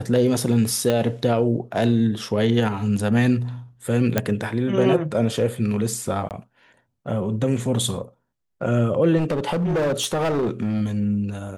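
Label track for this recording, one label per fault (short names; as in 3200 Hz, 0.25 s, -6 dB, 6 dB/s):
0.900000	0.900000	pop -9 dBFS
4.180000	4.180000	pop -5 dBFS
6.290000	6.310000	gap 18 ms
9.170000	10.820000	clipped -18.5 dBFS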